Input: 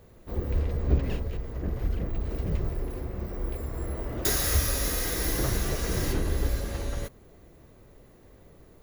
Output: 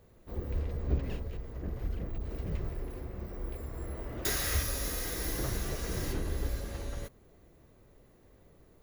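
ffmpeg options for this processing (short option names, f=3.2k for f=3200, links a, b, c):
-filter_complex "[0:a]asettb=1/sr,asplit=3[a][b][c];[a]atrim=end=2.184[d];[b]atrim=start=2.18:end=4.63,asetpts=PTS-STARTPTS,afade=t=in:d=0.004:c=qsin,afade=t=out:st=2.446:d=0.004:c=qsin,adynamicequalizer=threshold=0.00447:dfrequency=2200:dqfactor=0.79:tfrequency=2200:tqfactor=0.79:attack=5:release=100:ratio=0.375:range=2.5:mode=boostabove:tftype=bell[e];[c]atrim=start=4.626[f];[d][e]acrossfade=d=0.004:c1=hsin:c2=qsin[g];[g][f]acrossfade=d=0.004:c1=qsin:c2=hsin,volume=-6.5dB"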